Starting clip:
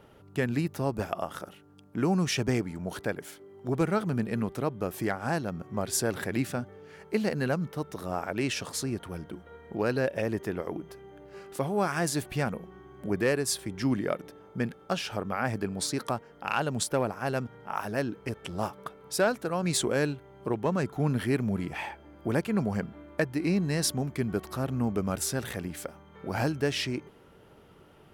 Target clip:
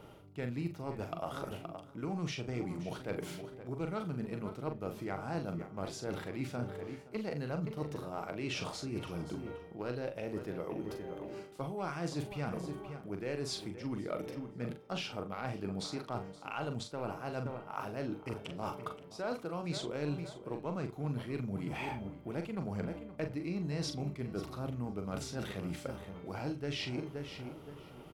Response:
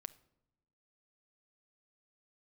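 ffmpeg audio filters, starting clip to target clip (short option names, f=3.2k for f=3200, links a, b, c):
-filter_complex "[0:a]asplit=2[a][b];[b]acrusher=bits=2:mix=0:aa=0.5,volume=-6dB[c];[a][c]amix=inputs=2:normalize=0,asplit=2[d][e];[e]adelay=523,lowpass=f=2.4k:p=1,volume=-15dB,asplit=2[f][g];[g]adelay=523,lowpass=f=2.4k:p=1,volume=0.31,asplit=2[h][i];[i]adelay=523,lowpass=f=2.4k:p=1,volume=0.31[j];[d][f][h][j]amix=inputs=4:normalize=0,acrossover=split=5500[k][l];[l]acompressor=threshold=-56dB:ratio=4:attack=1:release=60[m];[k][m]amix=inputs=2:normalize=0,equalizer=f=1.7k:t=o:w=0.23:g=-9,areverse,acompressor=threshold=-38dB:ratio=6,areverse,asplit=2[n][o];[o]adelay=41,volume=-7dB[p];[n][p]amix=inputs=2:normalize=0[q];[1:a]atrim=start_sample=2205,atrim=end_sample=3969[r];[q][r]afir=irnorm=-1:irlink=0,volume=6.5dB"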